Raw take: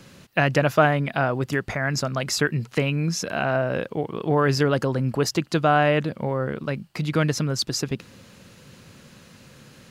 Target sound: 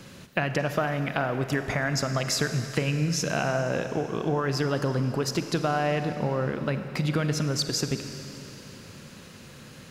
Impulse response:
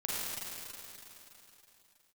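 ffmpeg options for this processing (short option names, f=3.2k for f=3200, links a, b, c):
-filter_complex "[0:a]acompressor=threshold=-25dB:ratio=6,asplit=2[a][b];[1:a]atrim=start_sample=2205[c];[b][c]afir=irnorm=-1:irlink=0,volume=-11dB[d];[a][d]amix=inputs=2:normalize=0"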